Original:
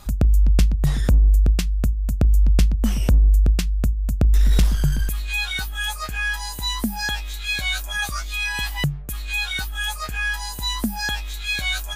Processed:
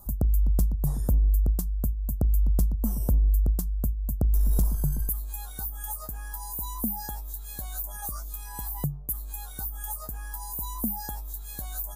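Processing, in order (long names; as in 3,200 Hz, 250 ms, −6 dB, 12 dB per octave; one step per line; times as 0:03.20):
drawn EQ curve 990 Hz 0 dB, 2,400 Hz −29 dB, 14,000 Hz +14 dB
level −7 dB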